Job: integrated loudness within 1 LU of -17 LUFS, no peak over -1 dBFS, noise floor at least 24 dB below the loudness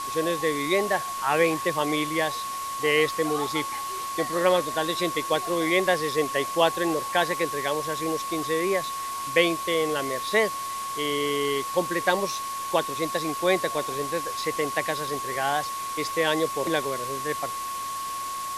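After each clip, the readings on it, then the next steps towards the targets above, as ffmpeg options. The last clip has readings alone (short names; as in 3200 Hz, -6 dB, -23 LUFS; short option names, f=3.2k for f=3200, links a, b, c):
steady tone 1100 Hz; tone level -30 dBFS; noise floor -32 dBFS; noise floor target -50 dBFS; loudness -26.0 LUFS; peak -5.5 dBFS; loudness target -17.0 LUFS
-> -af "bandreject=f=1.1k:w=30"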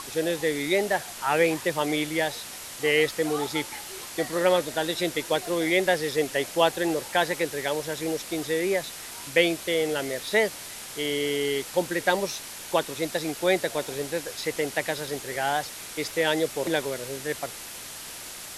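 steady tone none; noise floor -40 dBFS; noise floor target -51 dBFS
-> -af "afftdn=nr=11:nf=-40"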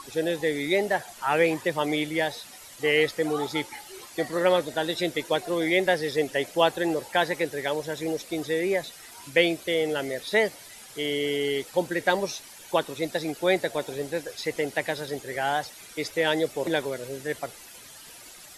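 noise floor -47 dBFS; noise floor target -51 dBFS
-> -af "afftdn=nr=6:nf=-47"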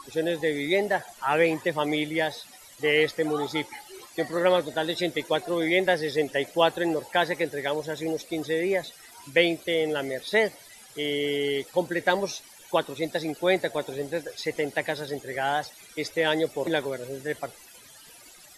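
noise floor -50 dBFS; noise floor target -51 dBFS
-> -af "afftdn=nr=6:nf=-50"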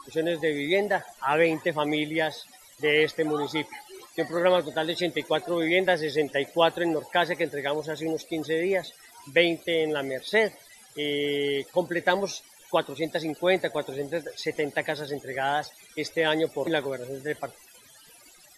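noise floor -53 dBFS; loudness -27.0 LUFS; peak -6.0 dBFS; loudness target -17.0 LUFS
-> -af "volume=10dB,alimiter=limit=-1dB:level=0:latency=1"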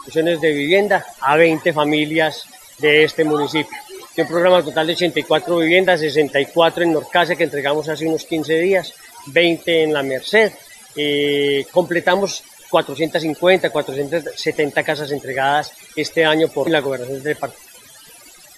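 loudness -17.0 LUFS; peak -1.0 dBFS; noise floor -43 dBFS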